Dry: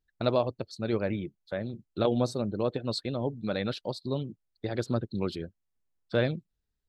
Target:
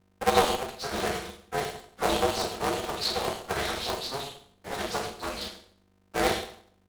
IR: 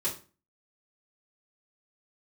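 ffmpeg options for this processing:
-filter_complex "[0:a]highpass=200,equalizer=frequency=3600:width=0.59:gain=6.5,bandreject=frequency=440:width=12,acrossover=split=380|2800[link_01][link_02][link_03];[link_01]acompressor=threshold=-51dB:ratio=6[link_04];[link_02]acrusher=samples=12:mix=1:aa=0.000001[link_05];[link_04][link_05][link_03]amix=inputs=3:normalize=0,asplit=2[link_06][link_07];[link_07]highpass=frequency=720:poles=1,volume=13dB,asoftclip=type=tanh:threshold=-15dB[link_08];[link_06][link_08]amix=inputs=2:normalize=0,lowpass=frequency=2800:poles=1,volume=-6dB,acrossover=split=320|2100[link_09][link_10][link_11];[link_11]adelay=80[link_12];[link_09]adelay=110[link_13];[link_13][link_10][link_12]amix=inputs=3:normalize=0,acrusher=bits=3:mode=log:mix=0:aa=0.000001,aeval=exprs='sgn(val(0))*max(abs(val(0))-0.00596,0)':channel_layout=same[link_14];[1:a]atrim=start_sample=2205,asetrate=25137,aresample=44100[link_15];[link_14][link_15]afir=irnorm=-1:irlink=0,aeval=exprs='val(0)+0.00112*(sin(2*PI*50*n/s)+sin(2*PI*2*50*n/s)/2+sin(2*PI*3*50*n/s)/3+sin(2*PI*4*50*n/s)/4+sin(2*PI*5*50*n/s)/5)':channel_layout=same,aeval=exprs='val(0)*sgn(sin(2*PI*140*n/s))':channel_layout=same,volume=-5.5dB"

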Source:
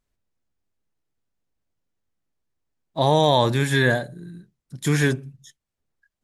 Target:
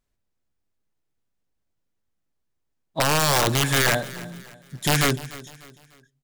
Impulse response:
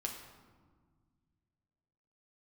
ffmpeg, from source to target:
-af "aeval=exprs='(mod(4.22*val(0)+1,2)-1)/4.22':channel_layout=same,aecho=1:1:298|596|894:0.126|0.0491|0.0191"

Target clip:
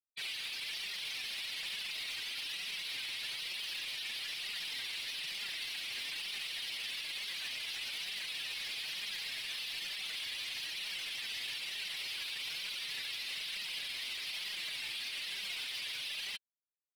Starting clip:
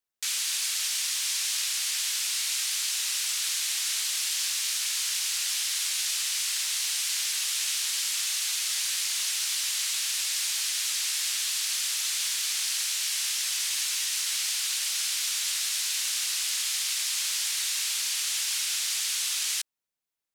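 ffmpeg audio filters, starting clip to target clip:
ffmpeg -i in.wav -filter_complex "[0:a]afftdn=noise_reduction=14:noise_floor=-42,lowpass=3100,bandreject=frequency=50:width_type=h:width=6,bandreject=frequency=100:width_type=h:width=6,bandreject=frequency=150:width_type=h:width=6,bandreject=frequency=200:width_type=h:width=6,bandreject=frequency=250:width_type=h:width=6,bandreject=frequency=300:width_type=h:width=6,bandreject=frequency=350:width_type=h:width=6,afftfilt=real='re*gte(hypot(re,im),0.0178)':imag='im*gte(hypot(re,im),0.0178)':win_size=1024:overlap=0.75,equalizer=frequency=290:width=2.3:gain=5,asplit=2[link_01][link_02];[link_02]alimiter=level_in=12.5dB:limit=-24dB:level=0:latency=1:release=11,volume=-12.5dB,volume=-3dB[link_03];[link_01][link_03]amix=inputs=2:normalize=0,asoftclip=type=tanh:threshold=-39.5dB,atempo=1.2,flanger=delay=4.7:depth=4.4:regen=14:speed=1.1:shape=triangular,volume=5.5dB" out.wav

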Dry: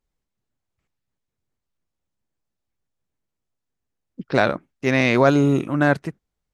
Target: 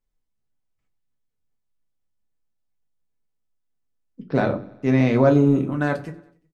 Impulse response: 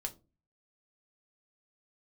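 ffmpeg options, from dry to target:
-filter_complex "[0:a]asettb=1/sr,asplit=3[link_01][link_02][link_03];[link_01]atrim=end=4.244[link_04];[link_02]atrim=start=4.24:end=5.72,asetpts=PTS-STARTPTS,afade=type=in:duration=0.004:curve=qsin,afade=type=out:start_time=1.476:duration=0.004:curve=qsin,tiltshelf=frequency=970:gain=6.5[link_05];[link_03]atrim=start=5.716[link_06];[link_04][link_05]acrossfade=duration=0.004:curve1=hsin:curve2=qsin[link_07];[link_07][link_06]acrossfade=duration=0.004:curve1=qsin:curve2=hsin,aecho=1:1:93|186|279|372:0.0794|0.0461|0.0267|0.0155[link_08];[1:a]atrim=start_sample=2205[link_09];[link_08][link_09]afir=irnorm=-1:irlink=0,volume=-4dB"

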